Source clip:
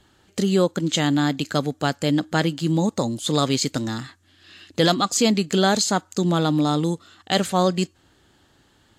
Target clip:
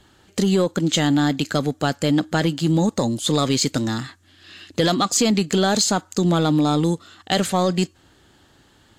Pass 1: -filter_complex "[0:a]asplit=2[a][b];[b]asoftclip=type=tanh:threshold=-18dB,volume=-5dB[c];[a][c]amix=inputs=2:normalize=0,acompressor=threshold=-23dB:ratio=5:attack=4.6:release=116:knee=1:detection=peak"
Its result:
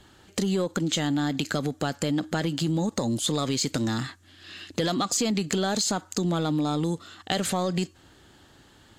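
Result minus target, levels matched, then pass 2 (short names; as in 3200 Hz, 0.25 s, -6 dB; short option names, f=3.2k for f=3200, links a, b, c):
compressor: peak gain reduction +7.5 dB
-filter_complex "[0:a]asplit=2[a][b];[b]asoftclip=type=tanh:threshold=-18dB,volume=-5dB[c];[a][c]amix=inputs=2:normalize=0,acompressor=threshold=-13.5dB:ratio=5:attack=4.6:release=116:knee=1:detection=peak"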